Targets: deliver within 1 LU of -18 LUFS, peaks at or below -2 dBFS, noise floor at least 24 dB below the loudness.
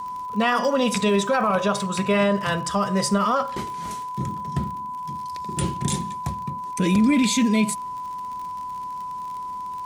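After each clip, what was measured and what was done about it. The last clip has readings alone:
tick rate 53 per s; steady tone 1 kHz; tone level -29 dBFS; loudness -24.0 LUFS; peak level -9.0 dBFS; loudness target -18.0 LUFS
-> de-click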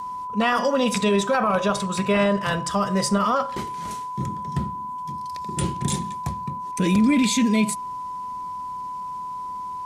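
tick rate 0.41 per s; steady tone 1 kHz; tone level -29 dBFS
-> band-stop 1 kHz, Q 30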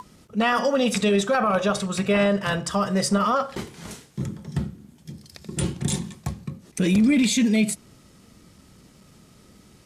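steady tone not found; loudness -23.0 LUFS; peak level -9.5 dBFS; loudness target -18.0 LUFS
-> trim +5 dB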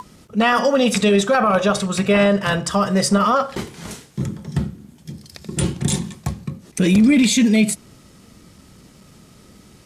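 loudness -18.0 LUFS; peak level -4.5 dBFS; noise floor -49 dBFS

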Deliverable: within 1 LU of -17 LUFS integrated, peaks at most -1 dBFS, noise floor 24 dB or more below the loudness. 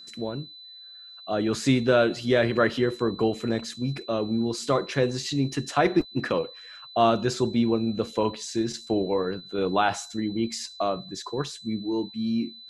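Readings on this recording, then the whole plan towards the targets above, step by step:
steady tone 4 kHz; tone level -43 dBFS; loudness -26.0 LUFS; peak level -7.0 dBFS; loudness target -17.0 LUFS
-> band-stop 4 kHz, Q 30; trim +9 dB; peak limiter -1 dBFS

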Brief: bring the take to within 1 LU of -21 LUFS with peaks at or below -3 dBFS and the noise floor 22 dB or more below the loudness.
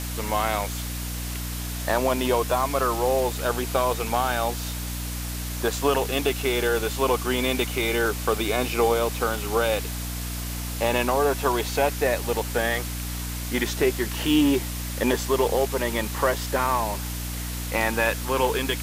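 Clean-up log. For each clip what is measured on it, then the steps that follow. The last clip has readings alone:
hum 60 Hz; highest harmonic 300 Hz; hum level -29 dBFS; noise floor -31 dBFS; noise floor target -47 dBFS; loudness -25.0 LUFS; peak level -8.0 dBFS; loudness target -21.0 LUFS
-> hum notches 60/120/180/240/300 Hz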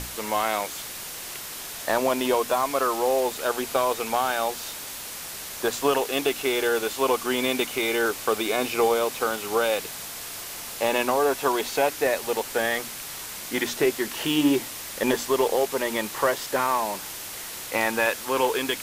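hum not found; noise floor -37 dBFS; noise floor target -48 dBFS
-> noise print and reduce 11 dB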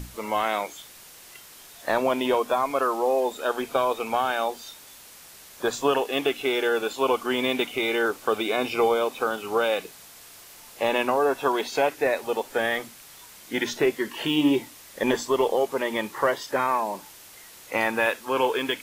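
noise floor -48 dBFS; loudness -25.0 LUFS; peak level -8.5 dBFS; loudness target -21.0 LUFS
-> trim +4 dB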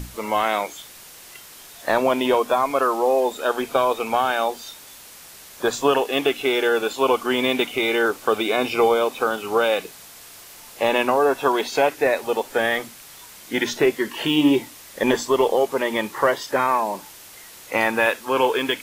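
loudness -21.0 LUFS; peak level -4.5 dBFS; noise floor -44 dBFS

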